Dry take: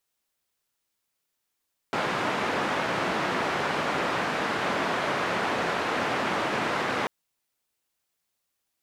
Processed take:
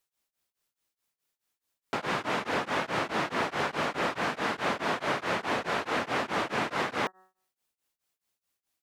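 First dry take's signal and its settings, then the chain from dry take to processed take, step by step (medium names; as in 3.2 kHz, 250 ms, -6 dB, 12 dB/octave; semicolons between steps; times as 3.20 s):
noise band 160–1500 Hz, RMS -27.5 dBFS 5.14 s
de-hum 187 Hz, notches 10; tremolo of two beating tones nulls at 4.7 Hz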